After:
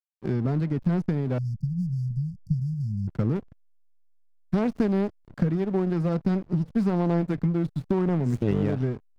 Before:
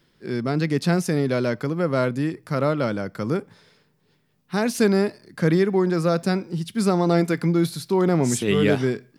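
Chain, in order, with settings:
RIAA equalisation playback
downward compressor 6 to 1, threshold −21 dBFS, peak gain reduction 13.5 dB
harmonic generator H 4 −20 dB, 7 −30 dB, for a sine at −11 dBFS
slack as between gear wheels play −32 dBFS
0:01.38–0:03.08: linear-phase brick-wall band-stop 210–4,500 Hz

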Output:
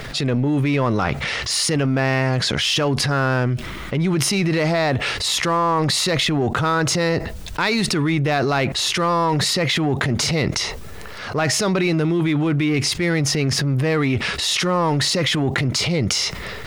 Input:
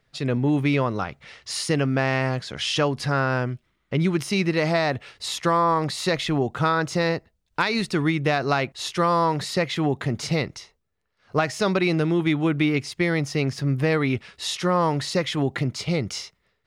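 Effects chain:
in parallel at −6.5 dB: gain into a clipping stage and back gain 27 dB
on the sum: transient designer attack −6 dB, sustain +6 dB
envelope flattener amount 70%

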